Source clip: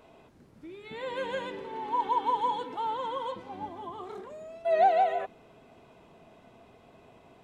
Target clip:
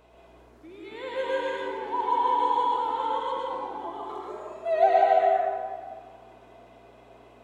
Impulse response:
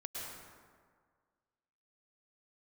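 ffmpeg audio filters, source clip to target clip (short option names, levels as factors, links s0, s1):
-filter_complex "[0:a]highpass=f=280:w=0.5412,highpass=f=280:w=1.3066,aeval=exprs='val(0)+0.000891*(sin(2*PI*60*n/s)+sin(2*PI*2*60*n/s)/2+sin(2*PI*3*60*n/s)/3+sin(2*PI*4*60*n/s)/4+sin(2*PI*5*60*n/s)/5)':c=same[s0];[1:a]atrim=start_sample=2205[s1];[s0][s1]afir=irnorm=-1:irlink=0,volume=1.58"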